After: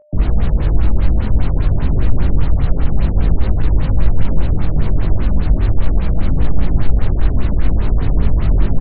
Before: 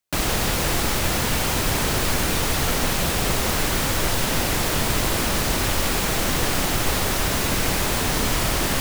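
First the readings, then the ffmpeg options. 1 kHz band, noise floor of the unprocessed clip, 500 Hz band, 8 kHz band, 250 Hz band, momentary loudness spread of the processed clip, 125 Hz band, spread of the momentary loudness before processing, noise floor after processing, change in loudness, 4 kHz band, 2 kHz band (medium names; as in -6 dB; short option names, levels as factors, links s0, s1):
-7.5 dB, -23 dBFS, -2.5 dB, under -40 dB, +3.5 dB, 2 LU, +10.5 dB, 0 LU, -18 dBFS, +3.0 dB, -18.0 dB, -11.5 dB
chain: -filter_complex "[0:a]aemphasis=mode=reproduction:type=riaa,bandreject=f=3400:w=12,bandreject=f=112.2:t=h:w=4,bandreject=f=224.4:t=h:w=4,bandreject=f=336.6:t=h:w=4,bandreject=f=448.8:t=h:w=4,bandreject=f=561:t=h:w=4,bandreject=f=673.2:t=h:w=4,bandreject=f=785.4:t=h:w=4,bandreject=f=897.6:t=h:w=4,bandreject=f=1009.8:t=h:w=4,bandreject=f=1122:t=h:w=4,bandreject=f=1234.2:t=h:w=4,bandreject=f=1346.4:t=h:w=4,bandreject=f=1458.6:t=h:w=4,bandreject=f=1570.8:t=h:w=4,bandreject=f=1683:t=h:w=4,bandreject=f=1795.2:t=h:w=4,bandreject=f=1907.4:t=h:w=4,bandreject=f=2019.6:t=h:w=4,bandreject=f=2131.8:t=h:w=4,bandreject=f=2244:t=h:w=4,bandreject=f=2356.2:t=h:w=4,bandreject=f=2468.4:t=h:w=4,bandreject=f=2580.6:t=h:w=4,bandreject=f=2692.8:t=h:w=4,bandreject=f=2805:t=h:w=4,bandreject=f=2917.2:t=h:w=4,bandreject=f=3029.4:t=h:w=4,bandreject=f=3141.6:t=h:w=4,acrossover=split=310[s0][s1];[s1]acompressor=threshold=0.0447:ratio=6[s2];[s0][s2]amix=inputs=2:normalize=0,flanger=delay=0:depth=4:regen=-80:speed=0.46:shape=triangular,asoftclip=type=hard:threshold=0.473,acrusher=bits=5:mix=0:aa=0.000001,aeval=exprs='val(0)+0.00501*sin(2*PI*600*n/s)':c=same,asplit=2[s3][s4];[s4]adelay=19,volume=0.562[s5];[s3][s5]amix=inputs=2:normalize=0,afftfilt=real='re*lt(b*sr/1024,690*pow(4700/690,0.5+0.5*sin(2*PI*5*pts/sr)))':imag='im*lt(b*sr/1024,690*pow(4700/690,0.5+0.5*sin(2*PI*5*pts/sr)))':win_size=1024:overlap=0.75,volume=1.12"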